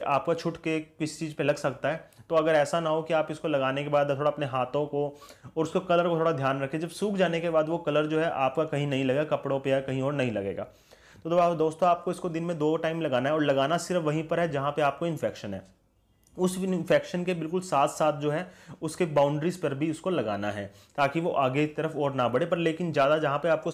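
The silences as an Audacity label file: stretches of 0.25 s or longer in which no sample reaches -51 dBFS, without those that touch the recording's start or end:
15.710000	16.240000	silence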